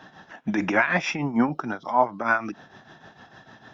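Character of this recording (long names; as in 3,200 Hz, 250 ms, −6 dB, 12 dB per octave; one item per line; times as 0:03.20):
tremolo triangle 6.6 Hz, depth 75%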